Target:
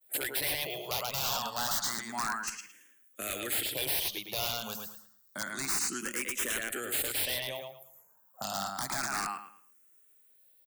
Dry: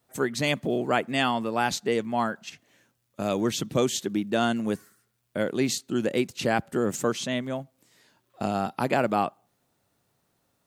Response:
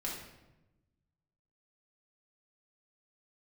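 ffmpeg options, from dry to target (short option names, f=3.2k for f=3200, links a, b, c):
-filter_complex "[0:a]aemphasis=mode=production:type=riaa,acrossover=split=130|960[a][b][c];[b]acompressor=threshold=-39dB:ratio=10[d];[a][d][c]amix=inputs=3:normalize=0,asettb=1/sr,asplit=3[e][f][g];[e]atrim=end=7.594[h];[f]atrim=start=7.59:end=8.43,asetpts=PTS-STARTPTS,afade=t=in:d=0.004:c=qsin,afade=t=out:st=0.836:d=0.004:c=qsin,asuperstop=centerf=3800:order=8:qfactor=0.69[i];[g]atrim=start=8.426[j];[h][i]acrossfade=d=0.004:c1=hsin:c2=qsin[k];[k][j]acrossfade=d=0.004:c1=qsin:c2=hsin,agate=range=-33dB:threshold=-50dB:ratio=3:detection=peak,asplit=2[l][m];[m]adelay=110,lowpass=f=3.9k:p=1,volume=-4dB,asplit=2[n][o];[o]adelay=110,lowpass=f=3.9k:p=1,volume=0.3,asplit=2[p][q];[q]adelay=110,lowpass=f=3.9k:p=1,volume=0.3,asplit=2[r][s];[s]adelay=110,lowpass=f=3.9k:p=1,volume=0.3[t];[n][p][r][t]amix=inputs=4:normalize=0[u];[l][u]amix=inputs=2:normalize=0,aeval=exprs='(mod(12.6*val(0)+1,2)-1)/12.6':c=same,asplit=2[v][w];[w]afreqshift=0.29[x];[v][x]amix=inputs=2:normalize=1"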